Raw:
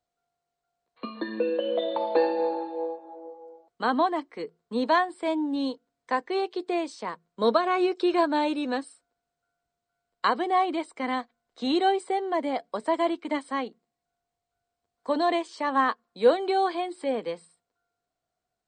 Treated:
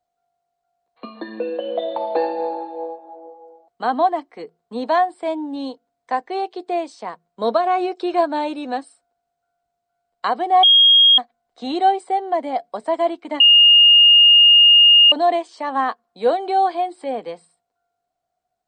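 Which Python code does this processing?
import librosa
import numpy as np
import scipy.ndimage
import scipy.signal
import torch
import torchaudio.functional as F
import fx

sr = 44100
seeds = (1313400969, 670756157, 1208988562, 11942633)

y = fx.edit(x, sr, fx.bleep(start_s=10.63, length_s=0.55, hz=3260.0, db=-8.0),
    fx.bleep(start_s=13.4, length_s=1.72, hz=2840.0, db=-7.0), tone=tone)
y = fx.peak_eq(y, sr, hz=730.0, db=10.5, octaves=0.38)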